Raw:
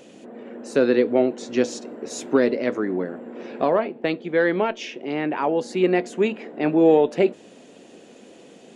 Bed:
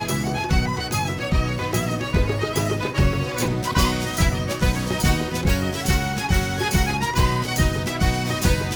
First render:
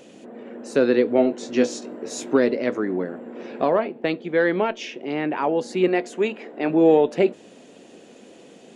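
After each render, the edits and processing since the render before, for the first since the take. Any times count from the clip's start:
0:01.16–0:02.33: double-tracking delay 20 ms −7 dB
0:05.88–0:06.70: parametric band 150 Hz −8 dB 1.3 octaves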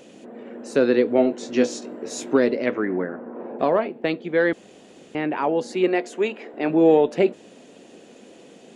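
0:02.65–0:03.58: low-pass with resonance 3,000 Hz → 800 Hz, resonance Q 1.9
0:04.53–0:05.15: fill with room tone
0:05.73–0:06.54: high-pass filter 220 Hz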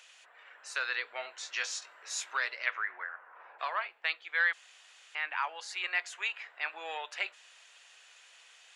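high-pass filter 1,200 Hz 24 dB per octave
high-shelf EQ 8,000 Hz −7 dB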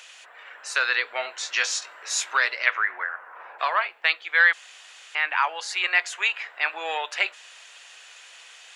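level +10.5 dB

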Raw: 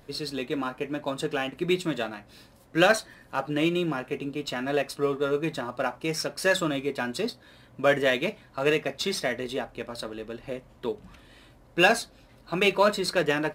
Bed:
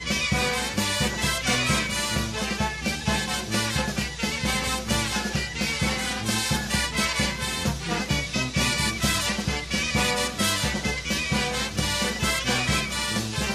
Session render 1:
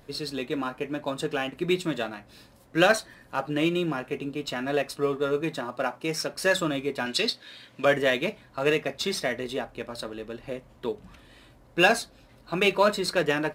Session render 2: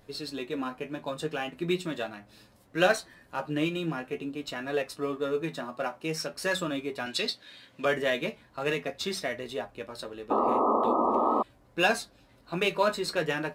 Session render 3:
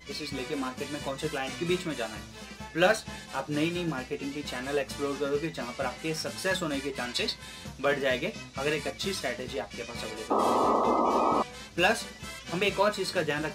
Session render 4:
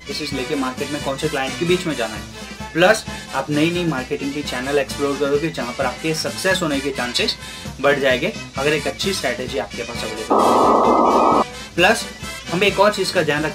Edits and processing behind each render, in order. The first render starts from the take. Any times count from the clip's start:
0:05.41–0:06.34: high-pass filter 130 Hz; 0:07.06–0:07.85: meter weighting curve D
flanger 0.42 Hz, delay 9.3 ms, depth 4 ms, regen +46%; 0:10.30–0:11.43: sound drawn into the spectrogram noise 210–1,300 Hz −25 dBFS
mix in bed −16.5 dB
level +11 dB; brickwall limiter −1 dBFS, peak gain reduction 2.5 dB

